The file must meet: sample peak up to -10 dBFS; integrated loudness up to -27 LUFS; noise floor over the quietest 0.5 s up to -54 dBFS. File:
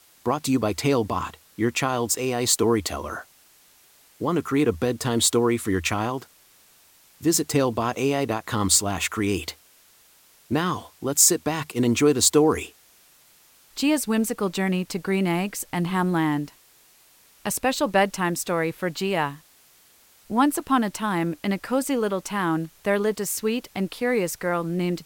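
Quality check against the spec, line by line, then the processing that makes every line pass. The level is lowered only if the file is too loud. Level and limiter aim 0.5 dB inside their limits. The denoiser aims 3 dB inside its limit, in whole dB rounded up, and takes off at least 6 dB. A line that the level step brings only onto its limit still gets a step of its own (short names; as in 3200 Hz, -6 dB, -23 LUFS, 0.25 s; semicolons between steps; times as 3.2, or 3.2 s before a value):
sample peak -3.5 dBFS: fail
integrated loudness -23.5 LUFS: fail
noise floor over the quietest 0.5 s -56 dBFS: OK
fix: gain -4 dB; limiter -10.5 dBFS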